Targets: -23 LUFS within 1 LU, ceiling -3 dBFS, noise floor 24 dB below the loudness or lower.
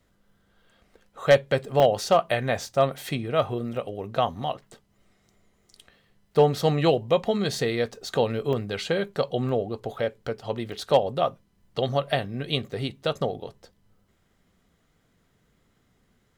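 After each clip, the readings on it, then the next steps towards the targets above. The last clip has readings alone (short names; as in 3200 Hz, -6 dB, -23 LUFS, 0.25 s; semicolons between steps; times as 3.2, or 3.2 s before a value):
dropouts 6; longest dropout 1.7 ms; loudness -25.5 LUFS; peak -9.0 dBFS; loudness target -23.0 LUFS
-> interpolate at 1.8/3.77/6.53/8.53/9.49/10.72, 1.7 ms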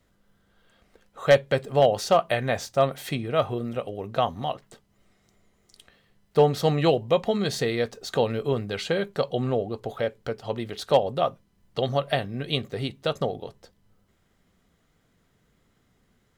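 dropouts 0; loudness -25.5 LUFS; peak -9.0 dBFS; loudness target -23.0 LUFS
-> gain +2.5 dB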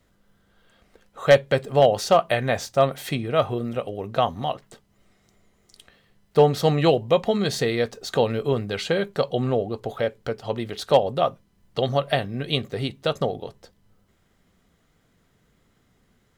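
loudness -23.0 LUFS; peak -7.0 dBFS; noise floor -65 dBFS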